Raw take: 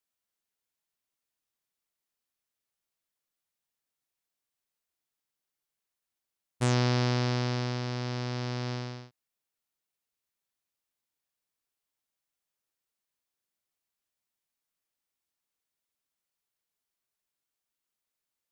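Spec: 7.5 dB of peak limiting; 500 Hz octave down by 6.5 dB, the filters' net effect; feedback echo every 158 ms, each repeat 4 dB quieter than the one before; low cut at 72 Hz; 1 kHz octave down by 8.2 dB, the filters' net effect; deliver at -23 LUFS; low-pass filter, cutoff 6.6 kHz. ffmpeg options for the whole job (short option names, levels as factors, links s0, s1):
-af "highpass=72,lowpass=6600,equalizer=f=500:t=o:g=-7,equalizer=f=1000:t=o:g=-8.5,alimiter=limit=0.075:level=0:latency=1,aecho=1:1:158|316|474|632|790|948|1106|1264|1422:0.631|0.398|0.25|0.158|0.0994|0.0626|0.0394|0.0249|0.0157,volume=3.76"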